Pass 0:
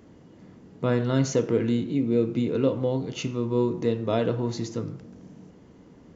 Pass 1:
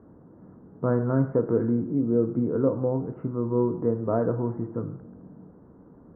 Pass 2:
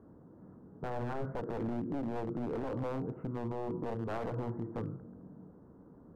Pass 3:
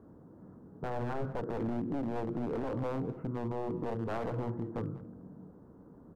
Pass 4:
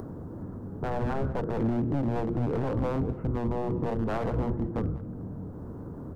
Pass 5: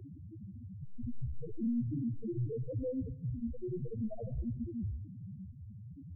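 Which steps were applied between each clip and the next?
steep low-pass 1.5 kHz 48 dB/octave
one-sided wavefolder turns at -24 dBFS; peak limiter -23.5 dBFS, peak gain reduction 11 dB; trim -5 dB
delay 193 ms -19 dB; trim +1.5 dB
octave divider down 1 oct, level 0 dB; upward compressor, threshold -35 dBFS; trim +5 dB
loudest bins only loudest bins 1; on a send at -18.5 dB: reverberation RT60 0.65 s, pre-delay 70 ms; on the sum: trim +1.5 dB

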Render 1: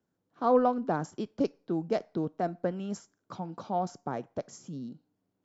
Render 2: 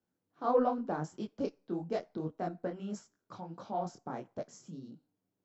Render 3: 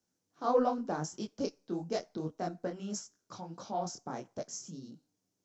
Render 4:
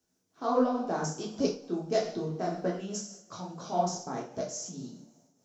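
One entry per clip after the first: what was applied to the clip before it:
detune thickener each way 56 cents; trim -1.5 dB
peaking EQ 6 kHz +15 dB 0.94 oct
two-slope reverb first 0.56 s, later 3.1 s, from -26 dB, DRR -1 dB; random flutter of the level, depth 60%; trim +4 dB

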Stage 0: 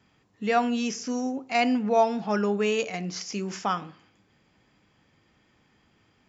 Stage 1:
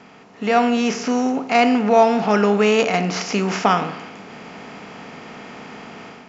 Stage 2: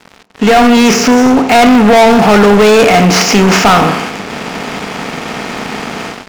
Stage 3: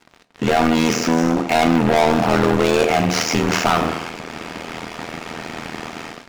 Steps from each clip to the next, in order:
spectral levelling over time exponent 0.6; treble shelf 6.4 kHz -9.5 dB; level rider gain up to 9 dB
waveshaping leveller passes 5
AM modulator 81 Hz, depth 95%; reverberation, pre-delay 3 ms, DRR 11.5 dB; trim -6.5 dB

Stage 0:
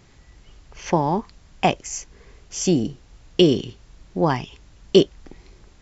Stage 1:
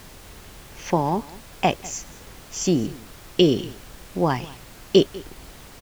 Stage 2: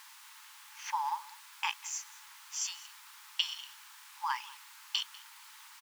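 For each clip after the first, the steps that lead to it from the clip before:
added noise pink -43 dBFS; delay 196 ms -21 dB; trim -1.5 dB
brick-wall FIR high-pass 820 Hz; trim -6 dB

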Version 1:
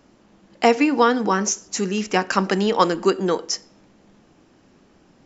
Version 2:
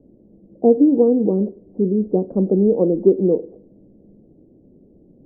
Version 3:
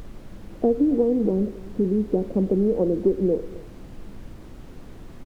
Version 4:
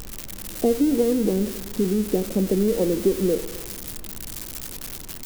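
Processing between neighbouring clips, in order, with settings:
steep low-pass 540 Hz 36 dB/octave; trim +5.5 dB
compression 2.5:1, threshold -22 dBFS, peak gain reduction 10 dB; added noise brown -40 dBFS; delay 269 ms -21.5 dB; trim +1.5 dB
zero-crossing glitches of -19.5 dBFS; on a send at -20 dB: reverberation RT60 1.8 s, pre-delay 30 ms

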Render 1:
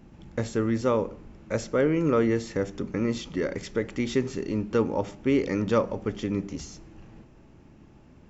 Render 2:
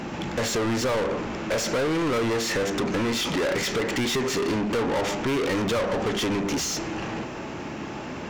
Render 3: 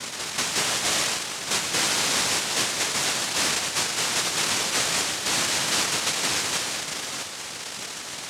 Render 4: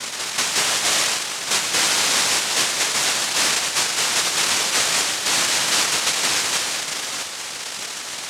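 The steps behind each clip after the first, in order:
compression 6:1, threshold -28 dBFS, peak gain reduction 10.5 dB; overdrive pedal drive 35 dB, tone 5.3 kHz, clips at -18 dBFS
noise-vocoded speech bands 1
bass shelf 370 Hz -8 dB; trim +5 dB

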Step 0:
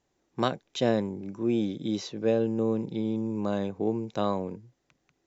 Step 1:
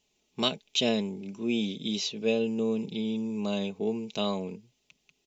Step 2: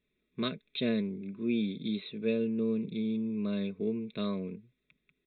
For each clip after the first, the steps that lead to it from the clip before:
resonant high shelf 2.1 kHz +8 dB, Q 3; comb 4.7 ms, depth 58%; trim -3.5 dB
static phaser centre 3 kHz, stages 6; resampled via 8 kHz

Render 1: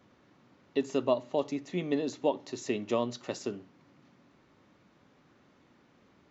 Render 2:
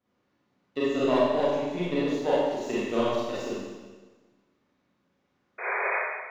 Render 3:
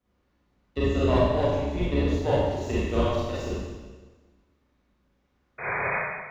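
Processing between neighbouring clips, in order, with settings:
power-law waveshaper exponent 1.4; painted sound noise, 5.58–5.96 s, 360–2500 Hz -36 dBFS; Schroeder reverb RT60 1.3 s, combs from 31 ms, DRR -9.5 dB; trim -1 dB
octave divider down 2 oct, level +4 dB

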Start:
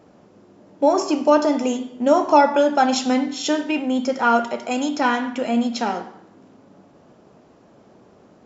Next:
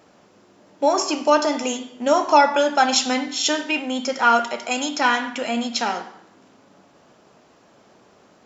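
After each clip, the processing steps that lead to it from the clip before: tilt shelf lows -6.5 dB, about 830 Hz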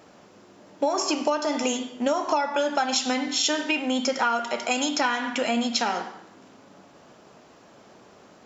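compression 12:1, threshold -22 dBFS, peak gain reduction 14 dB; trim +2 dB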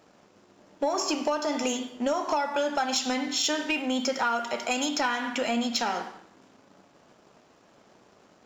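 waveshaping leveller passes 1; trim -6 dB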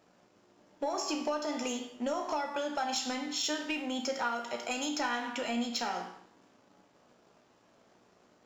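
feedback comb 60 Hz, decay 0.5 s, harmonics all, mix 70%

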